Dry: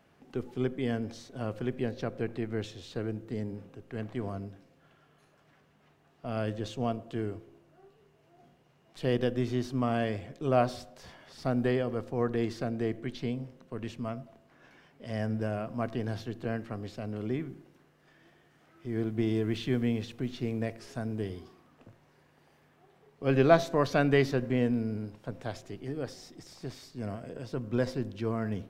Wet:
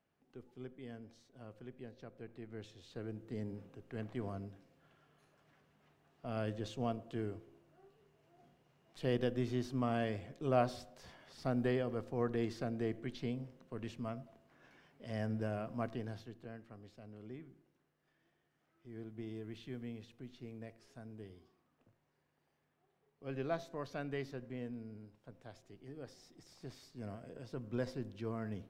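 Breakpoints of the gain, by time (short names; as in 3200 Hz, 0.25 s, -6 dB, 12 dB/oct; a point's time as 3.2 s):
2.15 s -18 dB
3.48 s -6 dB
15.82 s -6 dB
16.51 s -16.5 dB
25.49 s -16.5 dB
26.72 s -9 dB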